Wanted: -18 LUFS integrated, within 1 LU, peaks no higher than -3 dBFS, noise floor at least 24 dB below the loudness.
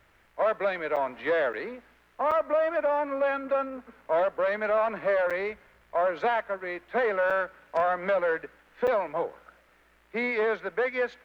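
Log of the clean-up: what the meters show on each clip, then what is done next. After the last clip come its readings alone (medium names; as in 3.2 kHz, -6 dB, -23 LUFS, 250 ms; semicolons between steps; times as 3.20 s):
dropouts 6; longest dropout 6.5 ms; loudness -28.0 LUFS; peak level -16.0 dBFS; loudness target -18.0 LUFS
-> interpolate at 0.96/1.53/2.31/5.30/7.30/8.87 s, 6.5 ms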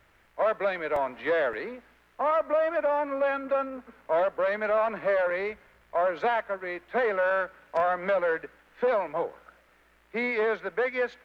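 dropouts 0; loudness -28.0 LUFS; peak level -16.0 dBFS; loudness target -18.0 LUFS
-> trim +10 dB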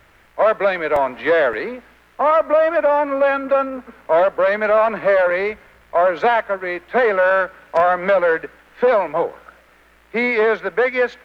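loudness -18.0 LUFS; peak level -6.0 dBFS; noise floor -52 dBFS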